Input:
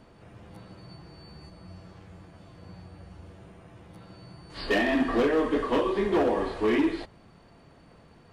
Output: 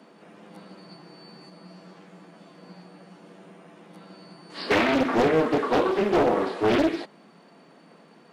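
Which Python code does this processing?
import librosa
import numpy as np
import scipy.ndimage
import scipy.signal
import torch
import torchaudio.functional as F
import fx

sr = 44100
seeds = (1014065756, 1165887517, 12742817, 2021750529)

y = scipy.signal.sosfilt(scipy.signal.butter(8, 170.0, 'highpass', fs=sr, output='sos'), x)
y = fx.doppler_dist(y, sr, depth_ms=0.78)
y = y * 10.0 ** (3.5 / 20.0)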